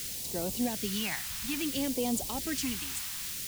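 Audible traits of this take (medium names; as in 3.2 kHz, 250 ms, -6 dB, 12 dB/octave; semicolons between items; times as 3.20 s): a quantiser's noise floor 6-bit, dither triangular; phasing stages 2, 0.59 Hz, lowest notch 430–1500 Hz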